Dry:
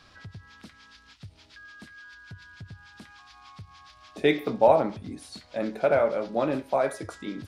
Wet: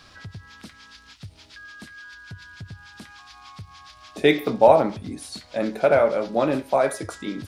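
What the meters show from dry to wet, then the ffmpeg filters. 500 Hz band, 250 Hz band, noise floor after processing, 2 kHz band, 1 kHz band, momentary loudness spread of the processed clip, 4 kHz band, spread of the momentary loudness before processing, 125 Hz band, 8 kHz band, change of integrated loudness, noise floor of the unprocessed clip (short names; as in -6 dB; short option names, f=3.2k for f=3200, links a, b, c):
+4.5 dB, +4.5 dB, -51 dBFS, +5.0 dB, +4.5 dB, 18 LU, +6.0 dB, 19 LU, +4.5 dB, n/a, +4.5 dB, -56 dBFS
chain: -af "highshelf=f=5.9k:g=6,volume=4.5dB"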